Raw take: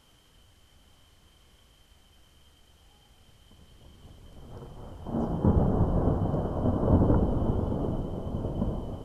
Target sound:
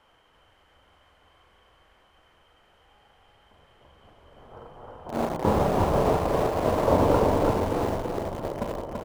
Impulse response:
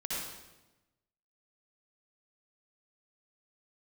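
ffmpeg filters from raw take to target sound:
-filter_complex "[0:a]acrossover=split=440 2400:gain=0.178 1 0.112[s0][s1][s2];[s0][s1][s2]amix=inputs=3:normalize=0,asplit=2[s3][s4];[s4]adelay=43,volume=0.447[s5];[s3][s5]amix=inputs=2:normalize=0,asplit=2[s6][s7];[s7]aeval=exprs='val(0)*gte(abs(val(0)),0.0211)':c=same,volume=0.631[s8];[s6][s8]amix=inputs=2:normalize=0,aecho=1:1:334|668|1002|1336:0.631|0.215|0.0729|0.0248,volume=1.88"

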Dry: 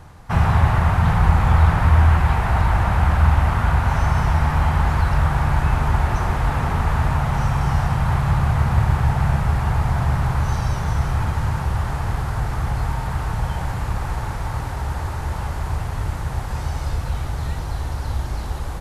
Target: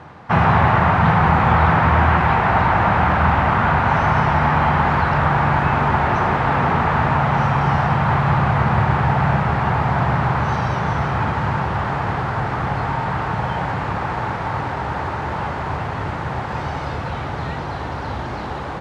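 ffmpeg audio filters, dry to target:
-af "highpass=170,lowpass=2900,volume=2.51"

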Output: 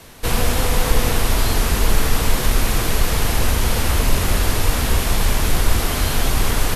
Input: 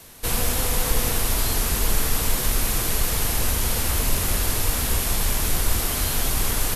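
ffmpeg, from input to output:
-af "highshelf=f=6100:g=-11,volume=2.11"

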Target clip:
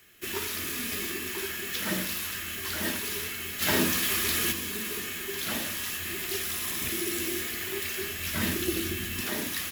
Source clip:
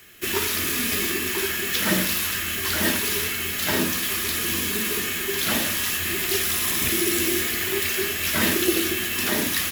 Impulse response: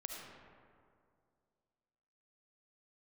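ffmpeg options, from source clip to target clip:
-filter_complex "[0:a]asplit=3[s0][s1][s2];[s0]afade=t=out:st=3.6:d=0.02[s3];[s1]acontrast=78,afade=t=in:st=3.6:d=0.02,afade=t=out:st=4.51:d=0.02[s4];[s2]afade=t=in:st=4.51:d=0.02[s5];[s3][s4][s5]amix=inputs=3:normalize=0,asettb=1/sr,asplit=3[s6][s7][s8];[s6]atrim=end=7.854[s9];[s7]atrim=start=7.85:end=9.21,asetpts=PTS-STARTPTS,afade=t=in:d=0.004:c=qsin,afade=t=out:st=1.356:d=0.004:c=qsin,asubboost=boost=9:cutoff=240[s10];[s8]atrim=start=9.206[s11];[s9][s10]acrossfade=d=0.004:c1=hsin:c2=qsin[s12];[s12][s11]acrossfade=d=0.004:c1=qsin:c2=hsin,volume=0.376"

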